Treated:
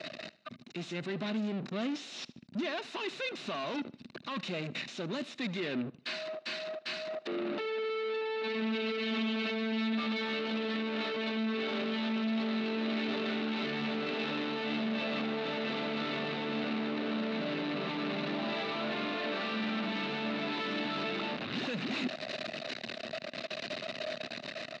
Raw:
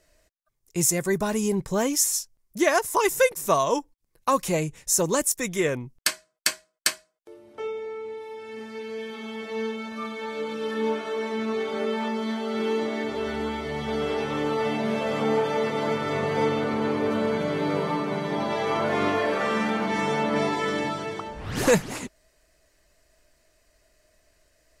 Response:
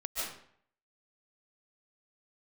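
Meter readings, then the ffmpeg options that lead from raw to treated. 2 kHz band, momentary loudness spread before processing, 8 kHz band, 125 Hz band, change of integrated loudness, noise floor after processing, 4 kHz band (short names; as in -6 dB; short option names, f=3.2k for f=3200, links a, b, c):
-5.5 dB, 12 LU, under -25 dB, -10.0 dB, -9.0 dB, -51 dBFS, -2.0 dB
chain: -filter_complex "[0:a]aeval=exprs='val(0)+0.5*0.0531*sgn(val(0))':c=same,bandreject=f=3.3k:w=8.3,anlmdn=39.8,equalizer=f=480:w=1.9:g=-9,dynaudnorm=f=330:g=9:m=14dB,alimiter=limit=-11.5dB:level=0:latency=1:release=350,areverse,acompressor=threshold=-29dB:ratio=4,areverse,asoftclip=type=hard:threshold=-31dB,highpass=f=160:w=0.5412,highpass=f=160:w=1.3066,equalizer=f=240:t=q:w=4:g=8,equalizer=f=370:t=q:w=4:g=3,equalizer=f=620:t=q:w=4:g=4,equalizer=f=930:t=q:w=4:g=-5,equalizer=f=2.7k:t=q:w=4:g=6,equalizer=f=3.8k:t=q:w=4:g=10,lowpass=f=4.3k:w=0.5412,lowpass=f=4.3k:w=1.3066,asplit=2[a][b];[b]aecho=0:1:75|150|225:0.1|0.035|0.0123[c];[a][c]amix=inputs=2:normalize=0,volume=-4dB"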